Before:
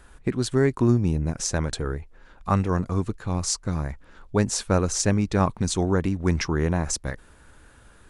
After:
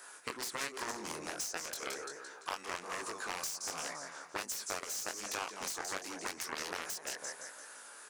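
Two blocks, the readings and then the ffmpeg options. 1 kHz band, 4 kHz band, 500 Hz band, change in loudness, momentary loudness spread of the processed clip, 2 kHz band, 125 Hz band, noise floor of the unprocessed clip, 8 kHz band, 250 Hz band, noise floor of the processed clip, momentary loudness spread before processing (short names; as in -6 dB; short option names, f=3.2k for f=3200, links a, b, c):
-9.5 dB, -7.0 dB, -18.0 dB, -15.0 dB, 6 LU, -5.5 dB, -37.0 dB, -53 dBFS, -8.5 dB, -26.5 dB, -53 dBFS, 9 LU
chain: -filter_complex "[0:a]highpass=440,acrossover=split=1500|7600[a][b][c];[a]acompressor=threshold=-30dB:ratio=4[d];[b]acompressor=threshold=-37dB:ratio=4[e];[c]acompressor=threshold=-46dB:ratio=4[f];[d][e][f]amix=inputs=3:normalize=0,aecho=1:1:171|342|513|684|855:0.316|0.139|0.0612|0.0269|0.0119,flanger=delay=18:depth=6.9:speed=1.3,aeval=exprs='0.126*(cos(1*acos(clip(val(0)/0.126,-1,1)))-cos(1*PI/2))+0.0282*(cos(7*acos(clip(val(0)/0.126,-1,1)))-cos(7*PI/2))':c=same,aexciter=amount=3.2:drive=6.9:freq=4.8k,acompressor=threshold=-39dB:ratio=6,asplit=2[g][h];[h]highpass=f=720:p=1,volume=19dB,asoftclip=type=tanh:threshold=-19.5dB[i];[g][i]amix=inputs=2:normalize=0,lowpass=f=4.2k:p=1,volume=-6dB,volume=-1.5dB"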